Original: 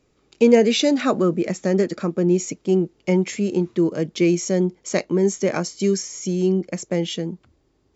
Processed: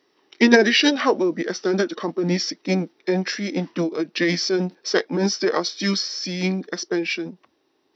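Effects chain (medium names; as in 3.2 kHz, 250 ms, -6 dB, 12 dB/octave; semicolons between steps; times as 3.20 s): high-pass 500 Hz 12 dB/octave; formant shift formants -4 st; trim +5 dB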